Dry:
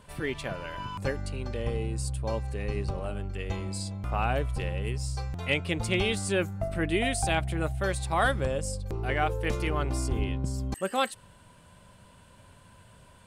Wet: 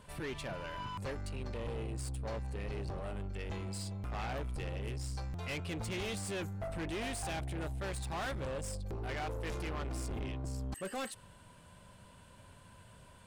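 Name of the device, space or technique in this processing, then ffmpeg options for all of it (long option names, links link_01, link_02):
saturation between pre-emphasis and de-emphasis: -af "highshelf=frequency=9900:gain=8,asoftclip=type=tanh:threshold=-33dB,highshelf=frequency=9900:gain=-8,volume=-2.5dB"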